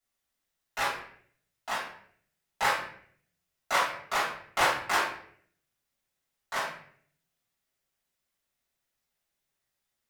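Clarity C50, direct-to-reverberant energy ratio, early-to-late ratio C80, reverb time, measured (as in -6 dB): 3.0 dB, -11.5 dB, 7.0 dB, 0.60 s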